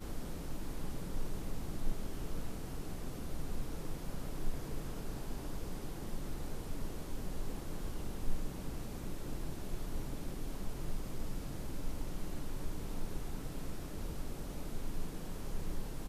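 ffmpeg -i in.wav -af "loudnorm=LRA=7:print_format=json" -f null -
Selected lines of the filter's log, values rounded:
"input_i" : "-44.8",
"input_tp" : "-20.7",
"input_lra" : "0.5",
"input_thresh" : "-54.8",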